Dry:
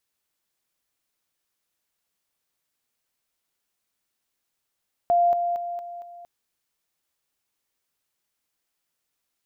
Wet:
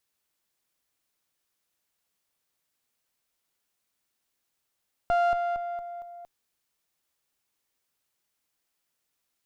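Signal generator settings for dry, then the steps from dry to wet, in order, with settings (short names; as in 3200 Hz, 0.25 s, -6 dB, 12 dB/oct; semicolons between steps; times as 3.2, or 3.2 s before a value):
level ladder 696 Hz -16 dBFS, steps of -6 dB, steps 5, 0.23 s 0.00 s
one diode to ground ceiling -33 dBFS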